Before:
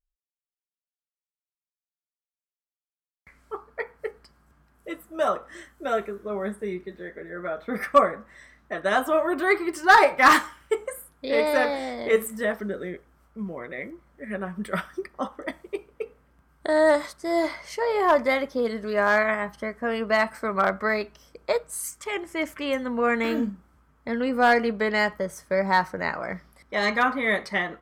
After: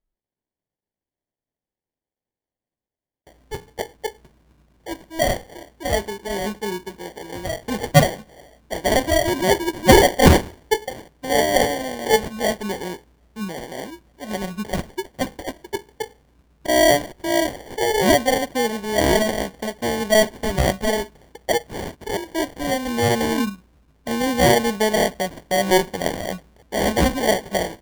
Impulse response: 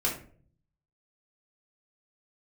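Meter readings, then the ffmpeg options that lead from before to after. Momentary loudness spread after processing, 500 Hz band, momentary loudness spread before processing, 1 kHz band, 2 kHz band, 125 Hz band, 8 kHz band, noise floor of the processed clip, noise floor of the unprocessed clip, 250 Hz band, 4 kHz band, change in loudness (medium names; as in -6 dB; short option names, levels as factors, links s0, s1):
17 LU, +4.5 dB, 17 LU, +1.0 dB, -0.5 dB, +16.5 dB, +12.5 dB, under -85 dBFS, under -85 dBFS, +6.5 dB, +10.0 dB, +3.5 dB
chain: -af "acrusher=samples=34:mix=1:aa=0.000001,volume=1.58"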